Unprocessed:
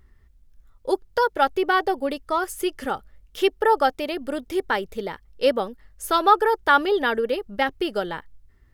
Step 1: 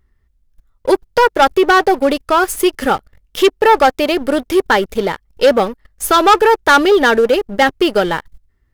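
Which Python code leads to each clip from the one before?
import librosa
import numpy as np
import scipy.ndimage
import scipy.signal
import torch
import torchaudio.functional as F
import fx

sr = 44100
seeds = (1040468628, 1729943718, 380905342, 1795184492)

y = fx.leveller(x, sr, passes=3)
y = y * librosa.db_to_amplitude(1.5)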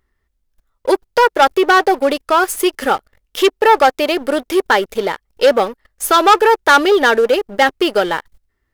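y = fx.bass_treble(x, sr, bass_db=-10, treble_db=0)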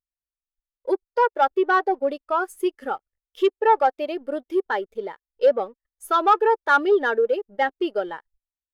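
y = fx.spectral_expand(x, sr, expansion=1.5)
y = y * librosa.db_to_amplitude(-6.0)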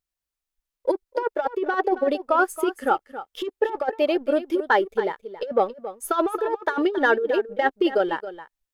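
y = fx.over_compress(x, sr, threshold_db=-22.0, ratio=-0.5)
y = y + 10.0 ** (-13.5 / 20.0) * np.pad(y, (int(273 * sr / 1000.0), 0))[:len(y)]
y = y * librosa.db_to_amplitude(2.5)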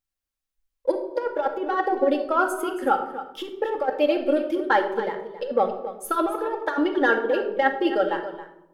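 y = fx.room_shoebox(x, sr, seeds[0], volume_m3=2300.0, walls='furnished', distance_m=2.2)
y = y * librosa.db_to_amplitude(-2.5)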